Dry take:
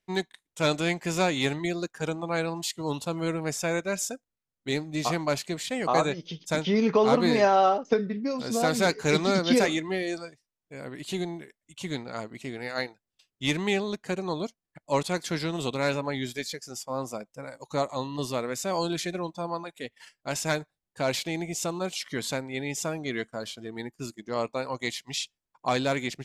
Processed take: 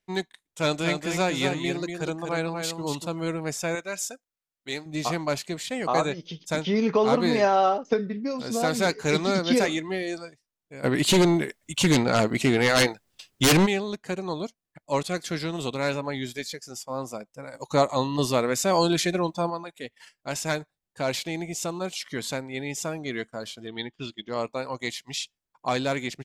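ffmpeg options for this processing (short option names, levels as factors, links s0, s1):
-filter_complex "[0:a]asplit=3[s0][s1][s2];[s0]afade=t=out:st=0.67:d=0.02[s3];[s1]aecho=1:1:240:0.501,afade=t=in:st=0.67:d=0.02,afade=t=out:st=3.06:d=0.02[s4];[s2]afade=t=in:st=3.06:d=0.02[s5];[s3][s4][s5]amix=inputs=3:normalize=0,asettb=1/sr,asplit=3[s6][s7][s8];[s6]atrim=end=3.754[s9];[s7]atrim=start=3.75:end=4.86,asetpts=PTS-STARTPTS,afade=t=in:d=0.004:c=qsin,afade=t=out:st=1.106:d=0.004:c=qsin,lowshelf=f=410:g=-11.5[s10];[s8]atrim=start=4.856[s11];[s9][s10]acrossfade=d=0.004:c1=hsin:c2=qsin[s12];[s12][s11]acrossfade=d=0.004:c1=qsin:c2=hsin,asplit=3[s13][s14][s15];[s13]afade=t=out:st=10.83:d=0.02[s16];[s14]aeval=exprs='0.2*sin(PI/2*4.47*val(0)/0.2)':c=same,afade=t=in:st=10.83:d=0.02,afade=t=out:st=13.65:d=0.02[s17];[s15]afade=t=in:st=13.65:d=0.02[s18];[s16][s17][s18]amix=inputs=3:normalize=0,asettb=1/sr,asplit=3[s19][s20][s21];[s19]atrim=end=15.014[s22];[s20]atrim=start=15.01:end=15.43,asetpts=PTS-STARTPTS,afade=t=in:d=0.004:c=qsin,afade=t=out:st=0.416:d=0.004:c=qsin,asuperstop=centerf=920:order=4:qfactor=5.4[s23];[s21]atrim=start=15.426[s24];[s22][s23]acrossfade=d=0.004:c1=hsin:c2=qsin[s25];[s25][s24]acrossfade=d=0.004:c1=qsin:c2=hsin,asplit=3[s26][s27][s28];[s26]afade=t=out:st=17.53:d=0.02[s29];[s27]acontrast=75,afade=t=in:st=17.53:d=0.02,afade=t=out:st=19.49:d=0.02[s30];[s28]afade=t=in:st=19.49:d=0.02[s31];[s29][s30][s31]amix=inputs=3:normalize=0,asettb=1/sr,asplit=3[s32][s33][s34];[s32]atrim=end=23.674[s35];[s33]atrim=start=23.67:end=24.29,asetpts=PTS-STARTPTS,afade=t=in:d=0.004:c=qsin,afade=t=out:st=0.616:d=0.004:c=qsin,lowpass=f=3300:t=q:w=10[s36];[s34]atrim=start=24.286[s37];[s35][s36]acrossfade=d=0.004:c1=hsin:c2=qsin[s38];[s38][s37]acrossfade=d=0.004:c1=qsin:c2=hsin"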